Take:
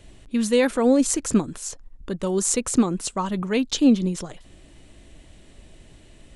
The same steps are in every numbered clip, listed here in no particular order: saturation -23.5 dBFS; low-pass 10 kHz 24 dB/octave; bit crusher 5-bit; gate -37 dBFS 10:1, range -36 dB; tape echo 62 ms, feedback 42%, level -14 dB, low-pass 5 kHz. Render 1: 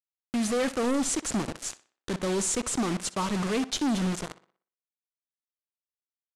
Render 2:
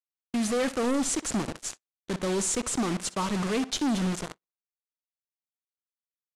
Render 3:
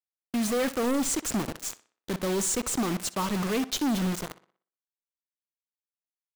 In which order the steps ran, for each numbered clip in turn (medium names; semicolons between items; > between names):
gate > bit crusher > saturation > tape echo > low-pass; bit crusher > saturation > low-pass > tape echo > gate; low-pass > bit crusher > gate > saturation > tape echo